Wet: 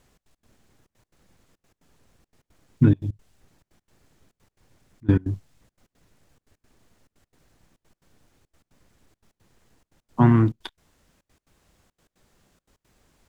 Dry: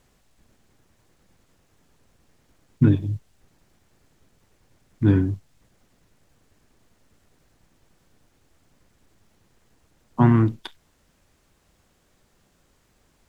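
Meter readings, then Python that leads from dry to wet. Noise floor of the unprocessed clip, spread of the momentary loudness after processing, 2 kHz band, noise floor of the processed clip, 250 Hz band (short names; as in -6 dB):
-65 dBFS, 18 LU, -0.5 dB, under -85 dBFS, -0.5 dB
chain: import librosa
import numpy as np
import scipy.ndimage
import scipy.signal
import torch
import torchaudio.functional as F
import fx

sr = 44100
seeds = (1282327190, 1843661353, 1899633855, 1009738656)

y = fx.step_gate(x, sr, bpm=174, pattern='xx.x.xxx', floor_db=-24.0, edge_ms=4.5)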